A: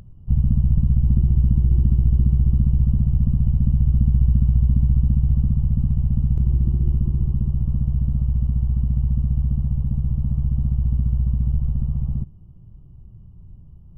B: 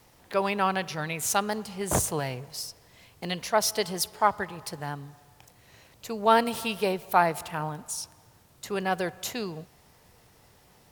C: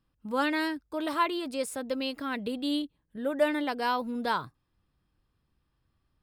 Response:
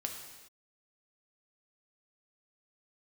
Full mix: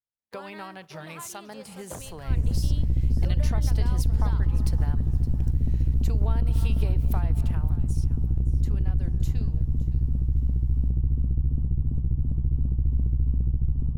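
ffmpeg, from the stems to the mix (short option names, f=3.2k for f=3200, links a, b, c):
-filter_complex "[0:a]aeval=exprs='(tanh(7.08*val(0)+0.6)-tanh(0.6))/7.08':c=same,alimiter=limit=-17.5dB:level=0:latency=1:release=235,lowshelf=f=180:g=7,adelay=2000,volume=-3dB[a];[1:a]lowshelf=f=190:g=3.5,acompressor=threshold=-32dB:ratio=10,volume=-4dB,afade=t=out:st=7.28:d=0.49:silence=0.375837,asplit=2[b][c];[c]volume=-17dB[d];[2:a]highpass=430,acompressor=threshold=-29dB:ratio=6,volume=-11dB[e];[d]aecho=0:1:566|1132|1698|2264:1|0.28|0.0784|0.022[f];[a][b][e][f]amix=inputs=4:normalize=0,agate=range=-45dB:threshold=-44dB:ratio=16:detection=peak"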